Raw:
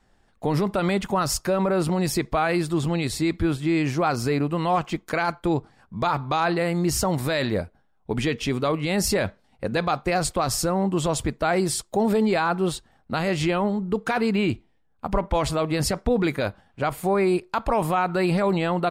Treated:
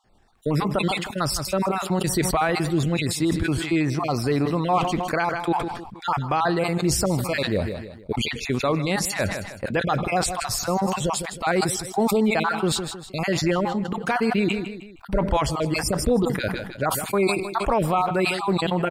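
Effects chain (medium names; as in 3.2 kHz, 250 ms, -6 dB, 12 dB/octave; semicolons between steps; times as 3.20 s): random holes in the spectrogram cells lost 33%; feedback delay 157 ms, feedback 39%, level -16 dB; decay stretcher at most 53 dB/s; trim +1 dB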